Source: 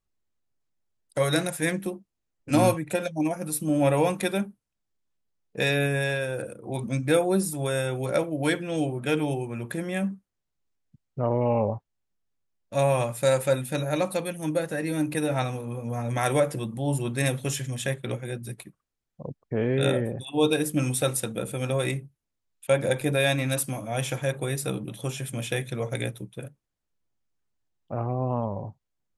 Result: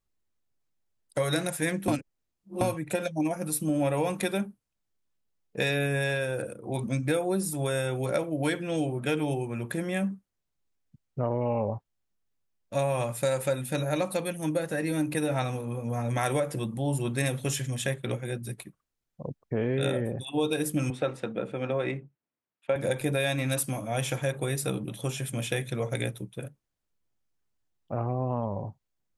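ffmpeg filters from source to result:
-filter_complex "[0:a]asettb=1/sr,asplit=3[s0][s1][s2];[s0]atrim=end=20.904[s3];[s1]atrim=start=20.9:end=22.76,asetpts=PTS-STARTPTS,afade=t=in:d=0.004:c=qsin,afade=t=out:st=1.856:d=0.004:c=qsin,highpass=180,lowpass=2300[s4];[s2]atrim=start=22.756[s5];[s3][s4]acrossfade=d=0.004:c1=hsin:c2=qsin[s6];[s6][s5]acrossfade=d=0.004:c1=qsin:c2=hsin,asplit=3[s7][s8][s9];[s7]atrim=end=1.882[s10];[s8]atrim=start=1.878:end=2.612,asetpts=PTS-STARTPTS,areverse[s11];[s9]atrim=start=2.608[s12];[s10][s11]acrossfade=d=0.004:c1=hsin:c2=hsin[s13];[s13][s12]acrossfade=d=0.004:c1=hsin:c2=hsin,acompressor=threshold=0.0708:ratio=6"

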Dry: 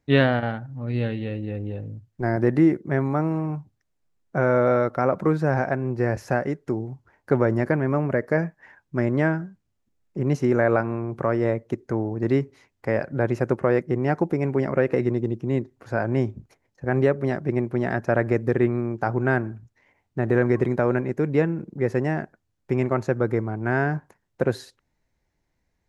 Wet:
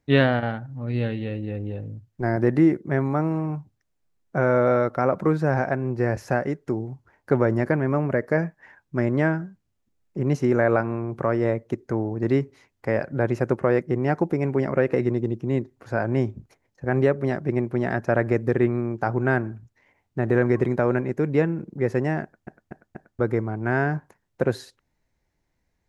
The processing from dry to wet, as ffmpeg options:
-filter_complex "[0:a]asplit=5[s0][s1][s2][s3][s4];[s0]atrim=end=22.472[s5];[s1]atrim=start=22.228:end=22.472[s6];[s2]atrim=start=22.228:end=22.472[s7];[s3]atrim=start=22.228:end=22.472[s8];[s4]atrim=start=23.188[s9];[s5][s6]acrossfade=d=0.004:c1=hsin:c2=hsin[s10];[s10][s7]acrossfade=d=0.004:c1=hsin:c2=hsin[s11];[s11][s8]acrossfade=d=0.004:c1=hsin:c2=hsin[s12];[s12][s9]acrossfade=d=0.004:c1=hsin:c2=hsin"

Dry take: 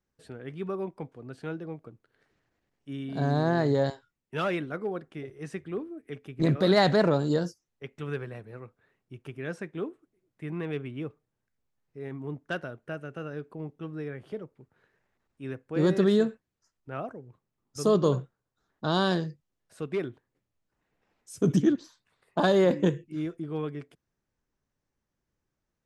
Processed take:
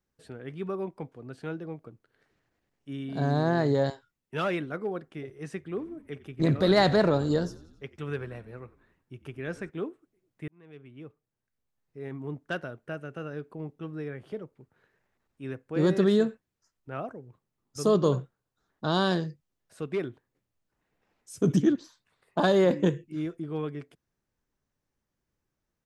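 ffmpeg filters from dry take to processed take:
-filter_complex "[0:a]asplit=3[s0][s1][s2];[s0]afade=t=out:st=5.77:d=0.02[s3];[s1]asplit=6[s4][s5][s6][s7][s8][s9];[s5]adelay=90,afreqshift=-53,volume=0.112[s10];[s6]adelay=180,afreqshift=-106,volume=0.0631[s11];[s7]adelay=270,afreqshift=-159,volume=0.0351[s12];[s8]adelay=360,afreqshift=-212,volume=0.0197[s13];[s9]adelay=450,afreqshift=-265,volume=0.0111[s14];[s4][s10][s11][s12][s13][s14]amix=inputs=6:normalize=0,afade=t=in:st=5.77:d=0.02,afade=t=out:st=9.69:d=0.02[s15];[s2]afade=t=in:st=9.69:d=0.02[s16];[s3][s15][s16]amix=inputs=3:normalize=0,asplit=2[s17][s18];[s17]atrim=end=10.48,asetpts=PTS-STARTPTS,afade=t=out:st=10.476:d=0.004:c=hsin[s19];[s18]atrim=start=10.48,asetpts=PTS-STARTPTS,afade=t=in:d=1.6[s20];[s19][s20]concat=n=2:v=0:a=1"

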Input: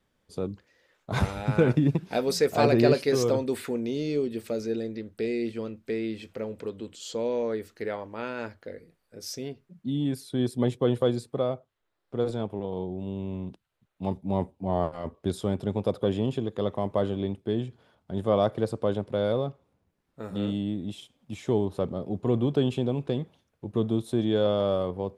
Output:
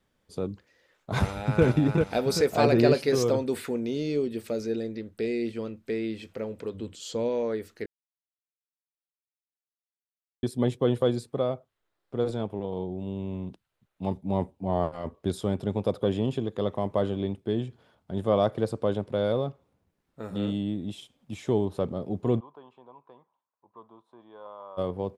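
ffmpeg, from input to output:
-filter_complex "[0:a]asplit=2[s0][s1];[s1]afade=t=in:st=1.22:d=0.01,afade=t=out:st=1.64:d=0.01,aecho=0:1:390|780|1170|1560|1950|2340:0.668344|0.300755|0.13534|0.0609028|0.0274063|0.0123328[s2];[s0][s2]amix=inputs=2:normalize=0,asettb=1/sr,asplit=3[s3][s4][s5];[s3]atrim=end=6.744[s6];[s4]atrim=start=6.74:end=7.29,asetpts=PTS-STARTPTS,afade=t=in:d=0.004:c=qsin,afade=t=out:st=0.546:d=0.004:c=qsin,equalizer=f=75:w=0.59:g=8.5[s7];[s5]atrim=start=7.286[s8];[s6][s7]acrossfade=d=0.004:c1=hsin:c2=qsin[s9];[s9][s8]acrossfade=d=0.004:c1=qsin:c2=hsin,asplit=3[s10][s11][s12];[s10]afade=t=out:st=22.39:d=0.02[s13];[s11]bandpass=f=1000:t=q:w=8.7,afade=t=in:st=22.39:d=0.02,afade=t=out:st=24.77:d=0.02[s14];[s12]afade=t=in:st=24.77:d=0.02[s15];[s13][s14][s15]amix=inputs=3:normalize=0,asplit=3[s16][s17][s18];[s16]atrim=end=7.86,asetpts=PTS-STARTPTS,afade=t=out:st=7.856:d=0.004:c=hsin[s19];[s17]atrim=start=7.86:end=10.43,asetpts=PTS-STARTPTS,volume=0[s20];[s18]atrim=start=10.43,asetpts=PTS-STARTPTS,afade=t=in:d=0.004:c=hsin[s21];[s19][s20][s21]concat=n=3:v=0:a=1"

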